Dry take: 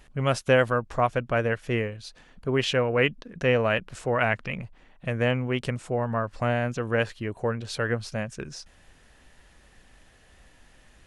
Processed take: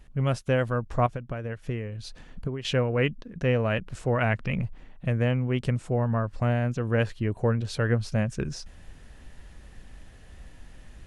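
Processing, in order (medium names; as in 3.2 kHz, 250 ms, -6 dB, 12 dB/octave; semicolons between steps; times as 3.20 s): 1.06–2.65 s: compression 16:1, threshold -34 dBFS, peak gain reduction 16 dB; bass shelf 280 Hz +11 dB; gain riding within 5 dB 0.5 s; trim -4.5 dB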